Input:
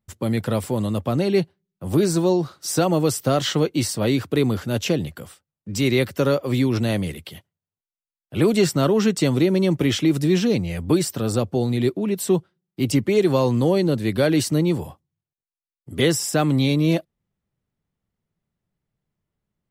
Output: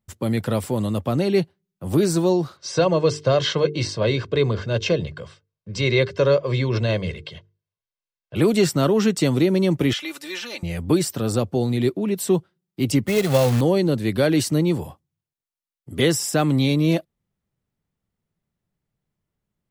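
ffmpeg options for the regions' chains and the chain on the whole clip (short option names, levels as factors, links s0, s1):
-filter_complex "[0:a]asettb=1/sr,asplit=3[s0][s1][s2];[s0]atrim=end=2.574[s3];[s1]atrim=start=2.57:end=8.36,asetpts=PTS-STARTPTS,afade=t=in:d=0.004:c=qsin,afade=t=out:st=5.786:d=0.004:c=qsin,lowpass=f=5600:w=0.5412,lowpass=f=5600:w=1.3066,bandreject=f=50:t=h:w=6,bandreject=f=100:t=h:w=6,bandreject=f=150:t=h:w=6,bandreject=f=200:t=h:w=6,bandreject=f=250:t=h:w=6,bandreject=f=300:t=h:w=6,bandreject=f=350:t=h:w=6,bandreject=f=400:t=h:w=6,bandreject=f=450:t=h:w=6,aecho=1:1:1.9:0.65,atrim=end_sample=255339[s4];[s2]atrim=start=8.356[s5];[s3][s4]acrossfade=d=0.004:c1=hsin:c2=qsin[s6];[s6][s5]acrossfade=d=0.004:c1=qsin:c2=hsin,asettb=1/sr,asplit=3[s7][s8][s9];[s7]atrim=end=9.934[s10];[s8]atrim=start=9.93:end=10.63,asetpts=PTS-STARTPTS,afade=t=in:d=0.004:c=qsin,afade=t=out:st=0.696:d=0.004:c=qsin,highpass=1000,acrossover=split=3700[s11][s12];[s12]acompressor=threshold=0.0126:ratio=4:attack=1:release=60[s13];[s11][s13]amix=inputs=2:normalize=0,aecho=1:1:3.4:0.65,atrim=end_sample=30870[s14];[s9]atrim=start=10.626[s15];[s10][s14]acrossfade=d=0.004:c1=hsin:c2=qsin[s16];[s16][s15]acrossfade=d=0.004:c1=qsin:c2=hsin,asettb=1/sr,asplit=3[s17][s18][s19];[s17]atrim=end=13.074[s20];[s18]atrim=start=13.07:end=13.61,asetpts=PTS-STARTPTS,afade=t=in:d=0.004:c=qsin,afade=t=out:st=0.536:d=0.004:c=qsin,aecho=1:1:1.5:0.73,atrim=end_sample=23814,acrusher=bits=3:mode=log:mix=0:aa=0.000001[s21];[s19]atrim=start=13.606[s22];[s20][s21]acrossfade=d=0.004:c1=hsin:c2=qsin[s23];[s23][s22]acrossfade=d=0.004:c1=qsin:c2=hsin"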